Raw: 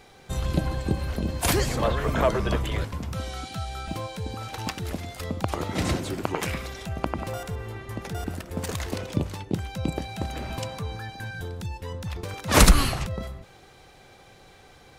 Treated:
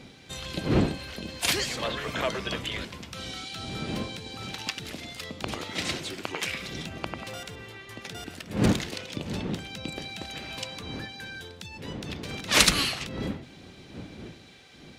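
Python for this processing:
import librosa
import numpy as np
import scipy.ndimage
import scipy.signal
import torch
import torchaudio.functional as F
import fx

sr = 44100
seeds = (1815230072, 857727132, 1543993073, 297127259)

y = fx.dmg_wind(x, sr, seeds[0], corner_hz=200.0, level_db=-24.0)
y = fx.weighting(y, sr, curve='D')
y = y * librosa.db_to_amplitude(-7.0)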